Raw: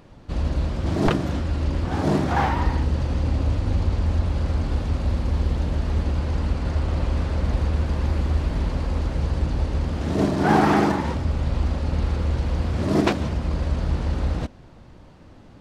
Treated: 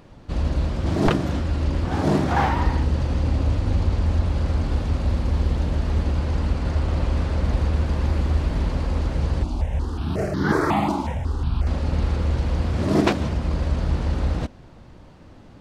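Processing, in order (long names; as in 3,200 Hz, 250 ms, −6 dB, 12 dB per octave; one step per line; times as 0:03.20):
0:09.43–0:11.67: step-sequenced phaser 5.5 Hz 480–2,500 Hz
level +1 dB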